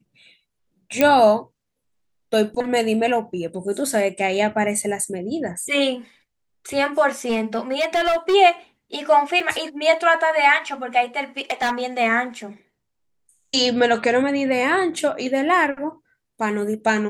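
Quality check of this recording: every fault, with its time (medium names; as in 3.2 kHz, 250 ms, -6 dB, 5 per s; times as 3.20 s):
1.01 s: pop -3 dBFS
7.28–8.35 s: clipped -15.5 dBFS
9.40 s: dropout 3.9 ms
11.39–11.72 s: clipped -17 dBFS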